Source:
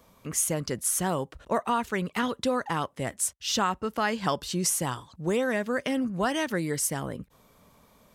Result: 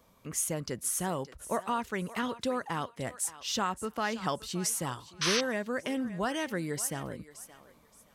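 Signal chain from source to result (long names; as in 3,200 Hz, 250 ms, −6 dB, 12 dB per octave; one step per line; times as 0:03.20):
feedback echo with a high-pass in the loop 572 ms, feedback 24%, high-pass 610 Hz, level −14 dB
sound drawn into the spectrogram noise, 0:05.21–0:05.41, 980–6,400 Hz −24 dBFS
level −5 dB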